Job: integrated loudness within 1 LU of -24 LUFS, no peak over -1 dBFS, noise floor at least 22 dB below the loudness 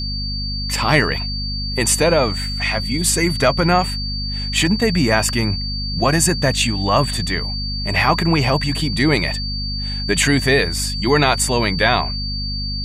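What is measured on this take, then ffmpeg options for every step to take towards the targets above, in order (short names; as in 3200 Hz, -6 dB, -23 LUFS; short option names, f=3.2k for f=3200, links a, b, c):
hum 50 Hz; harmonics up to 250 Hz; hum level -23 dBFS; steady tone 4600 Hz; tone level -25 dBFS; loudness -18.0 LUFS; peak -1.0 dBFS; loudness target -24.0 LUFS
-> -af "bandreject=f=50:t=h:w=6,bandreject=f=100:t=h:w=6,bandreject=f=150:t=h:w=6,bandreject=f=200:t=h:w=6,bandreject=f=250:t=h:w=6"
-af "bandreject=f=4.6k:w=30"
-af "volume=-6dB"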